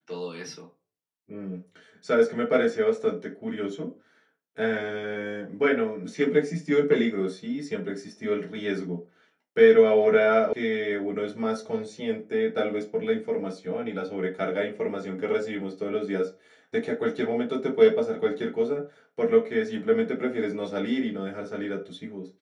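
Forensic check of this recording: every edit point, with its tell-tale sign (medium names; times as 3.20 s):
10.53 s: sound stops dead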